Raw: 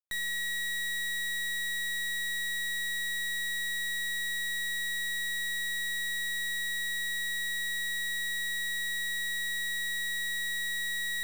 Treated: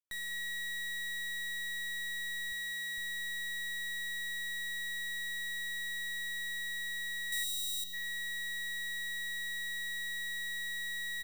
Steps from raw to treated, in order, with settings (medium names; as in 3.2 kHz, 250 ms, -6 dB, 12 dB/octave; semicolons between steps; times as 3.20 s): 2.52–2.98 s: high-pass 56 Hz; 7.32–7.84 s: treble shelf 3.4 kHz +11 dB; on a send: delay 201 ms -14 dB; 7.44–7.93 s: on the sum: time-frequency box 520–2700 Hz -23 dB; trim -6.5 dB